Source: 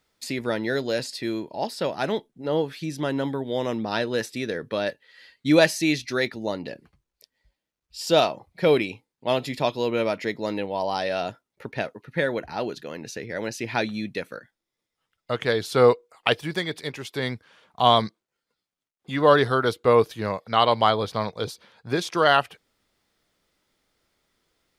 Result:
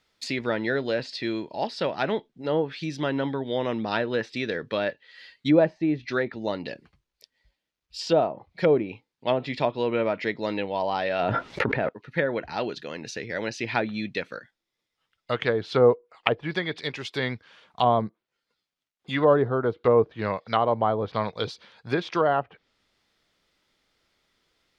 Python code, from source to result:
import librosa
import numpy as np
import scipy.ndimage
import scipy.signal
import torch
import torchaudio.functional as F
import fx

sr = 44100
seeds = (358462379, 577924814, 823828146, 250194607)

y = fx.env_flatten(x, sr, amount_pct=100, at=(11.19, 11.89))
y = fx.peak_eq(y, sr, hz=4200.0, db=7.0, octaves=2.6)
y = fx.env_lowpass_down(y, sr, base_hz=760.0, full_db=-16.0)
y = fx.peak_eq(y, sr, hz=10000.0, db=-8.0, octaves=1.6)
y = F.gain(torch.from_numpy(y), -1.0).numpy()